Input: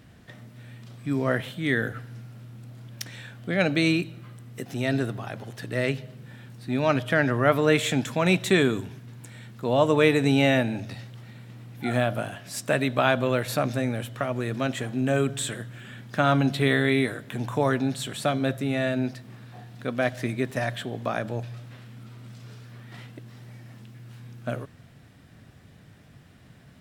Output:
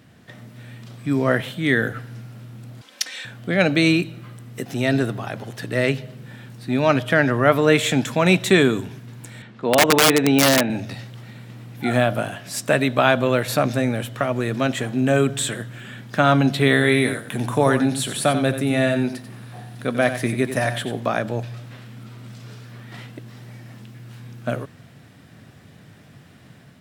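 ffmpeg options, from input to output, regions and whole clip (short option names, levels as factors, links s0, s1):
-filter_complex "[0:a]asettb=1/sr,asplit=3[s0][s1][s2];[s0]atrim=end=2.814[s3];[s1]atrim=start=2.81:end=3.25,asetpts=PTS-STARTPTS,afade=t=in:d=0.004:c=qsin,afade=t=out:st=0.436:d=0.004:c=qsin,highpass=380,lowpass=5200,aemphasis=mode=production:type=riaa,aecho=1:1:3.9:0.61,atrim=end_sample=19404[s4];[s2]atrim=start=3.246[s5];[s3][s4]acrossfade=d=0.004:c1=hsin:c2=qsin[s6];[s6][s5]acrossfade=d=0.004:c1=qsin:c2=hsin,asettb=1/sr,asplit=3[s7][s8][s9];[s7]atrim=end=9.424[s10];[s8]atrim=start=9.42:end=10.7,asetpts=PTS-STARTPTS,afade=t=in:d=0.004:c=qsin,afade=t=out:st=1.276:d=0.004:c=qsin,highpass=170,lowpass=3500,aeval=exprs='(mod(4.47*val(0)+1,2)-1)/4.47':c=same[s11];[s9]atrim=start=10.696[s12];[s10][s11]acrossfade=d=0.004:c1=hsin:c2=qsin[s13];[s13][s12]acrossfade=d=0.004:c1=qsin:c2=hsin,asettb=1/sr,asplit=3[s14][s15][s16];[s14]atrim=end=16.734[s17];[s15]atrim=start=16.73:end=21,asetpts=PTS-STARTPTS,afade=t=in:d=0.004:c=qsin,afade=t=out:st=4.266:d=0.004:c=qsin,equalizer=f=9900:t=o:w=0.24:g=12,aecho=1:1:91:0.316,atrim=end_sample=188307[s18];[s16]atrim=start=20.996[s19];[s17][s18]acrossfade=d=0.004:c1=hsin:c2=qsin[s20];[s20][s19]acrossfade=d=0.004:c1=qsin:c2=hsin,highpass=100,dynaudnorm=f=130:g=5:m=1.58,volume=1.26"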